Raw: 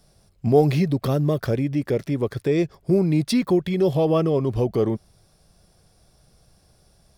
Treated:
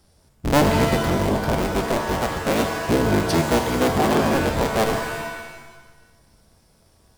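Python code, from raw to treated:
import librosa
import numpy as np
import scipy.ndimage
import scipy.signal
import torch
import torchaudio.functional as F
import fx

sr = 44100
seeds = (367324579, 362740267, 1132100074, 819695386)

y = fx.cycle_switch(x, sr, every=3, mode='inverted')
y = fx.rev_shimmer(y, sr, seeds[0], rt60_s=1.1, semitones=7, shimmer_db=-2, drr_db=5.5)
y = y * 10.0 ** (-1.5 / 20.0)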